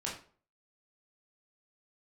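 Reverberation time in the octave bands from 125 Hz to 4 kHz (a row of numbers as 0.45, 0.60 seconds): 0.45, 0.45, 0.45, 0.40, 0.35, 0.30 seconds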